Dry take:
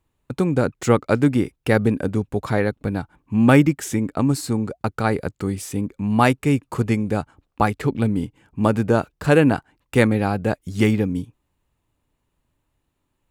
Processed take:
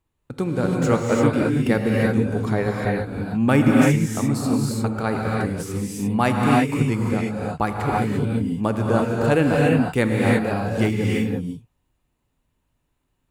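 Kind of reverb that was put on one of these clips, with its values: non-linear reverb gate 0.37 s rising, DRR -2.5 dB; gain -4.5 dB

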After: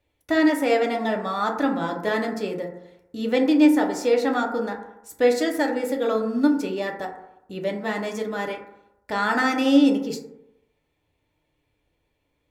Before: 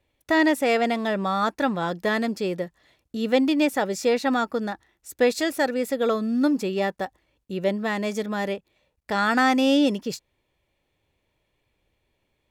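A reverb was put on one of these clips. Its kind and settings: FDN reverb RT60 0.87 s, low-frequency decay 0.9×, high-frequency decay 0.3×, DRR 1 dB; gain -3 dB

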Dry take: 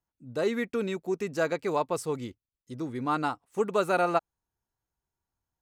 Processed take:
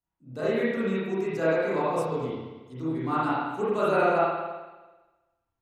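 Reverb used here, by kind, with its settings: spring tank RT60 1.2 s, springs 31/56 ms, chirp 55 ms, DRR -10 dB; gain -7.5 dB

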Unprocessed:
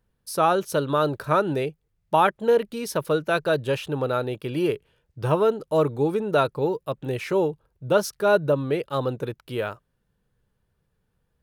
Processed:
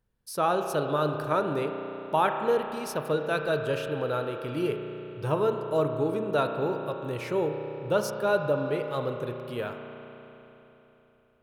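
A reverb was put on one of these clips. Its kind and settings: spring tank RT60 3.6 s, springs 33 ms, chirp 75 ms, DRR 4.5 dB; gain -5.5 dB

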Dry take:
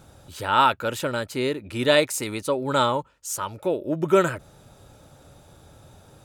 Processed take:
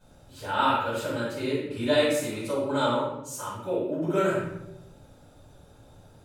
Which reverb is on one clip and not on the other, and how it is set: shoebox room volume 260 m³, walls mixed, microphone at 6.6 m; gain -20 dB

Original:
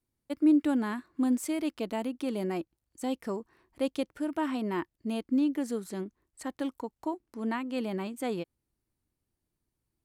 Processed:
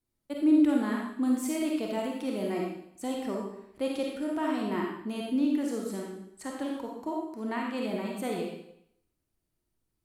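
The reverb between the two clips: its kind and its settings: digital reverb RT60 0.71 s, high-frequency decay 1×, pre-delay 10 ms, DRR -1.5 dB; gain -2 dB

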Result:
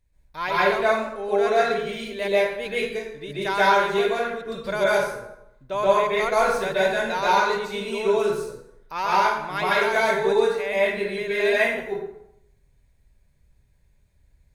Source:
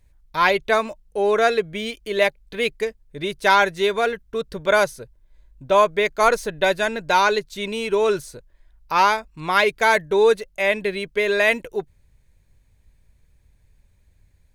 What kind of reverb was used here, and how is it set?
plate-style reverb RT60 0.79 s, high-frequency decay 0.7×, pre-delay 0.115 s, DRR -8.5 dB; gain -11.5 dB

